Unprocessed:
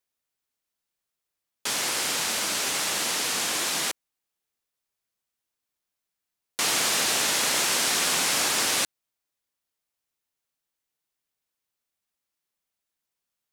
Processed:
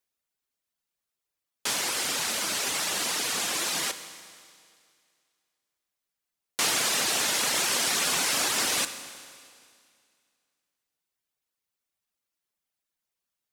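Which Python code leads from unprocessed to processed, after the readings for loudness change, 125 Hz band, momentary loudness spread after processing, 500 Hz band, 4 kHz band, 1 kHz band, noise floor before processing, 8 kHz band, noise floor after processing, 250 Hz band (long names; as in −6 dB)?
−2.0 dB, −2.0 dB, 11 LU, −2.0 dB, −2.0 dB, −2.0 dB, −85 dBFS, −2.0 dB, below −85 dBFS, −1.5 dB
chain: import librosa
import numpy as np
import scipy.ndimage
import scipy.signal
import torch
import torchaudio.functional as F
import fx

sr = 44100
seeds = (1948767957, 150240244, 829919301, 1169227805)

y = fx.dereverb_blind(x, sr, rt60_s=0.79)
y = fx.rev_schroeder(y, sr, rt60_s=2.2, comb_ms=32, drr_db=10.5)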